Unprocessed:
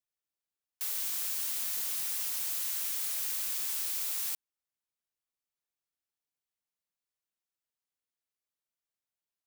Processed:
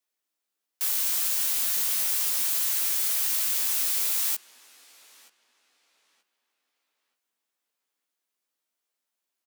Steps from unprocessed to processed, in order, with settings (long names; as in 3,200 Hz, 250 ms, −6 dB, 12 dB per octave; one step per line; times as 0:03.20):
Butterworth high-pass 200 Hz 48 dB per octave
double-tracking delay 16 ms −4 dB
on a send: feedback echo with a low-pass in the loop 930 ms, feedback 31%, low-pass 4,000 Hz, level −18 dB
on the sum: level +6.5 dB